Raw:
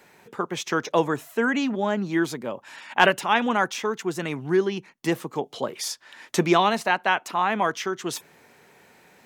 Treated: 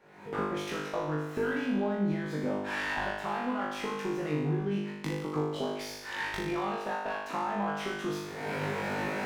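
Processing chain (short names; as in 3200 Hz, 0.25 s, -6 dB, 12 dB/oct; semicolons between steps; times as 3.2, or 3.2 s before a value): recorder AGC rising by 48 dB/s; tube stage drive 7 dB, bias 0.5; compressor, threshold -27 dBFS, peak gain reduction 13.5 dB; LPF 1400 Hz 6 dB/oct; on a send: flutter echo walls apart 3.4 m, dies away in 0.99 s; on the sum: running maximum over 3 samples; gain -5.5 dB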